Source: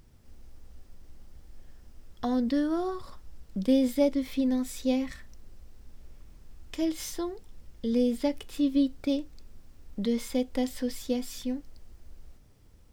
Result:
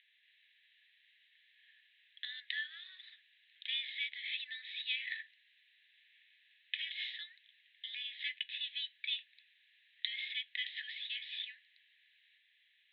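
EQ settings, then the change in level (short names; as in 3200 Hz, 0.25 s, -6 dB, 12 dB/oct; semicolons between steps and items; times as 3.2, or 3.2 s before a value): Chebyshev band-pass 1700–3900 Hz, order 5; +8.0 dB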